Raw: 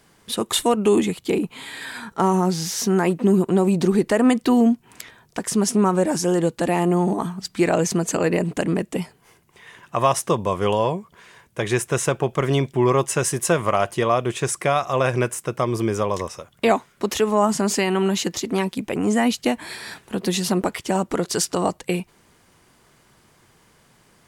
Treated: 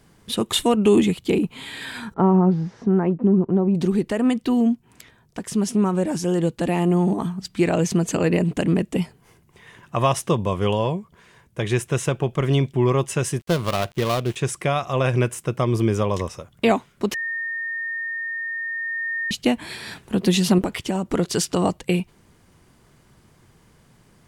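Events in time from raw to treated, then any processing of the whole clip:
2.14–3.75 LPF 1200 Hz
13.4–14.36 switching dead time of 0.17 ms
17.14–19.31 bleep 1830 Hz -21.5 dBFS
20.58–21.1 compressor 2.5:1, threshold -23 dBFS
whole clip: dynamic EQ 3000 Hz, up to +6 dB, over -44 dBFS, Q 1.5; vocal rider 2 s; low shelf 300 Hz +10.5 dB; gain -5.5 dB

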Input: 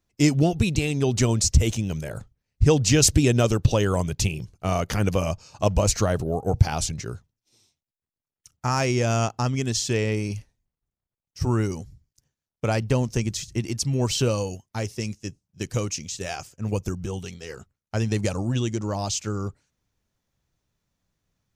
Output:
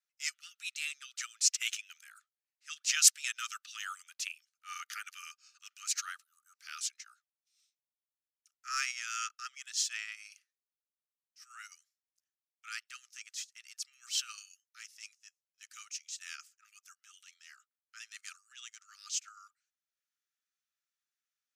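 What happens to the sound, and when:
1.37–2.02 dynamic EQ 2600 Hz, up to +7 dB, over -45 dBFS, Q 1.3
whole clip: Chebyshev high-pass 1200 Hz, order 10; transient shaper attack -9 dB, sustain -5 dB; upward expander 1.5:1, over -44 dBFS; gain +2.5 dB

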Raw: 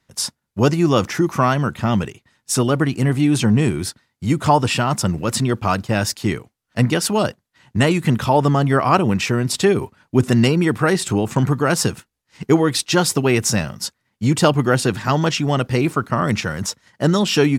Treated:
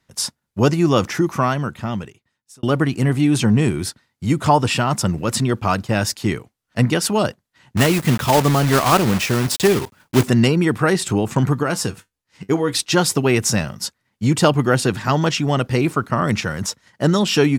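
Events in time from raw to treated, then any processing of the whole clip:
1.14–2.63 fade out
7.77–10.28 block floating point 3-bit
11.63–12.73 resonator 96 Hz, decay 0.15 s

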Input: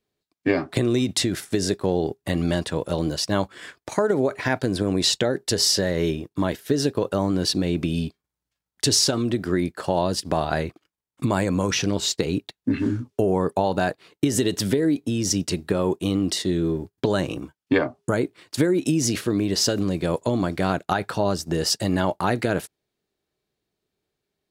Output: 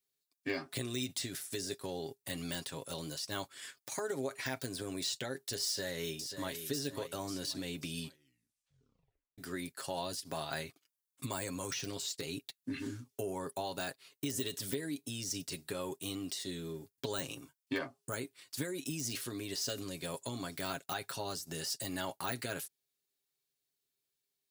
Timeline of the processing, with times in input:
5.65–6.53 echo throw 0.54 s, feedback 40%, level -9.5 dB
8.03 tape stop 1.35 s
whole clip: de-esser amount 80%; pre-emphasis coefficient 0.9; comb 7.4 ms, depth 56%

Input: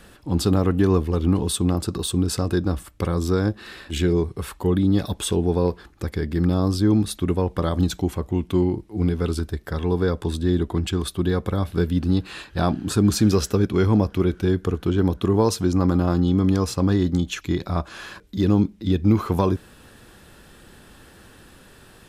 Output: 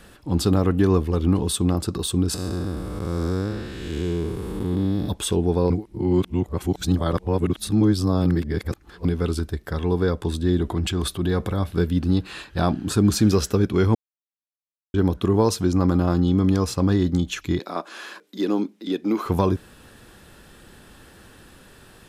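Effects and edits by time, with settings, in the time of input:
2.34–5.09 time blur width 0.384 s
5.7–9.05 reverse
10.6–11.6 transient shaper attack -4 dB, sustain +5 dB
13.95–14.94 mute
17.59–19.26 HPF 260 Hz 24 dB/oct

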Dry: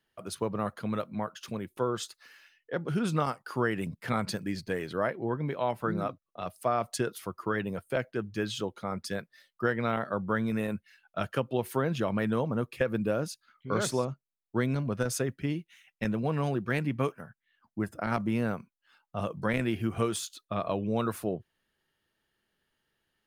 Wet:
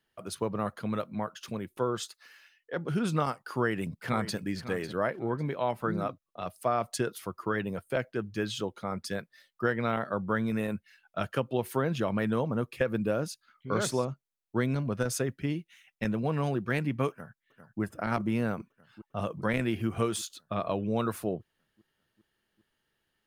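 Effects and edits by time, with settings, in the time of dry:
2–2.77 low shelf 220 Hz -10 dB
3.43–4.42 echo throw 0.55 s, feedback 25%, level -13.5 dB
17.1–17.81 echo throw 0.4 s, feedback 75%, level -10 dB

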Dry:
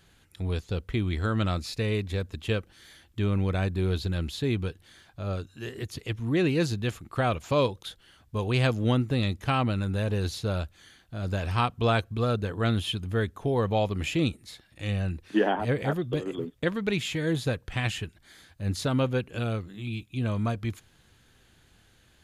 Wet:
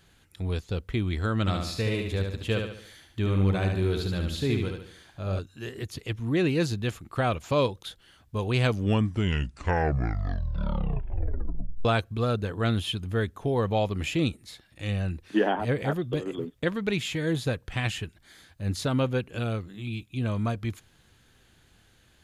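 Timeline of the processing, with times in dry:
1.4–5.39 feedback echo 72 ms, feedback 44%, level -4.5 dB
8.54 tape stop 3.31 s

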